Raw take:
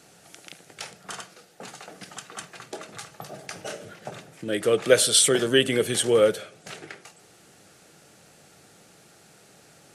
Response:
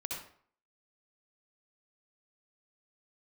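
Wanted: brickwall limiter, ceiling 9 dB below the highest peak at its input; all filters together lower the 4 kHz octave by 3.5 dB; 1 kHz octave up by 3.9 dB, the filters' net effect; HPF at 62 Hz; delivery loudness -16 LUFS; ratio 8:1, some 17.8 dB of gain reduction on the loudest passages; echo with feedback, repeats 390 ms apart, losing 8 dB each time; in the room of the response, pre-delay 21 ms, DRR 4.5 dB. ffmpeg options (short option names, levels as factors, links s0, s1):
-filter_complex "[0:a]highpass=62,equalizer=f=1000:t=o:g=6,equalizer=f=4000:t=o:g=-5,acompressor=threshold=0.0355:ratio=8,alimiter=level_in=1.33:limit=0.0631:level=0:latency=1,volume=0.75,aecho=1:1:390|780|1170|1560|1950:0.398|0.159|0.0637|0.0255|0.0102,asplit=2[s0][s1];[1:a]atrim=start_sample=2205,adelay=21[s2];[s1][s2]afir=irnorm=-1:irlink=0,volume=0.531[s3];[s0][s3]amix=inputs=2:normalize=0,volume=11.2"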